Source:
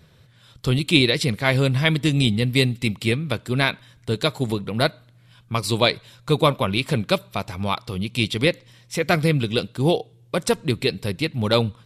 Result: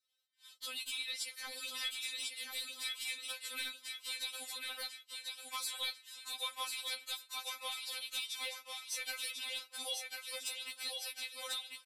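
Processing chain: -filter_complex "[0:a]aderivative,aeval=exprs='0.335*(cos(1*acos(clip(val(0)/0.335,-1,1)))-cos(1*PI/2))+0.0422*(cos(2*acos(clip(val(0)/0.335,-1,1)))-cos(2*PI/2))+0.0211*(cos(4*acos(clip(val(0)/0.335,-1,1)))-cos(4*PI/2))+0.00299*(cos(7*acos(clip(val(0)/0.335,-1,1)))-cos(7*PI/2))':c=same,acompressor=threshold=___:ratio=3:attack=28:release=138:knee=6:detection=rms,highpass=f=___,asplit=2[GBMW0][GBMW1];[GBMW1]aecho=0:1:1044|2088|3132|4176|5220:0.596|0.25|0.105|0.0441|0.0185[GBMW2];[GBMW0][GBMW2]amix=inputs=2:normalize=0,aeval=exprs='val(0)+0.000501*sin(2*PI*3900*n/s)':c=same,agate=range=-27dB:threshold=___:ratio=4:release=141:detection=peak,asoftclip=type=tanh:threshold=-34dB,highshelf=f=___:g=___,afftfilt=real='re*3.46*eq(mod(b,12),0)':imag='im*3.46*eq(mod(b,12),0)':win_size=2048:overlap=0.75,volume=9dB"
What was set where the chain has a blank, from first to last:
-47dB, 620, -56dB, 11000, -7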